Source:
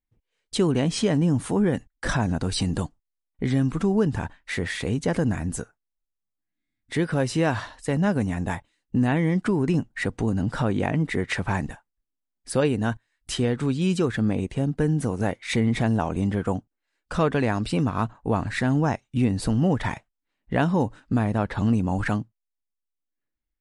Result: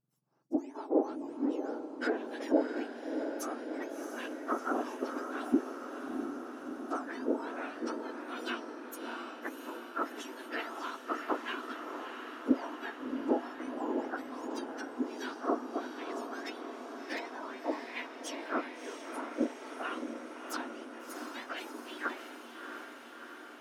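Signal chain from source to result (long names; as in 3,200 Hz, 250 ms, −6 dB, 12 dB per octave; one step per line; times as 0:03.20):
frequency axis turned over on the octave scale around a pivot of 1,600 Hz
treble cut that deepens with the level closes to 740 Hz, closed at −26 dBFS
gain on a spectral selection 0:00.42–0:00.64, 350–4,300 Hz −9 dB
feedback delay with all-pass diffusion 673 ms, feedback 70%, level −6.5 dB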